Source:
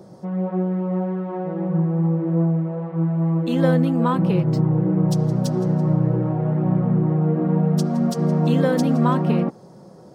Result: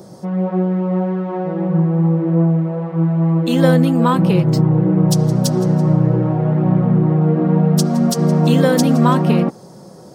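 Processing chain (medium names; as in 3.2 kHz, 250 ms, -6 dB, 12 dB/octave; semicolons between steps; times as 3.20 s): treble shelf 3.8 kHz +10 dB; trim +5 dB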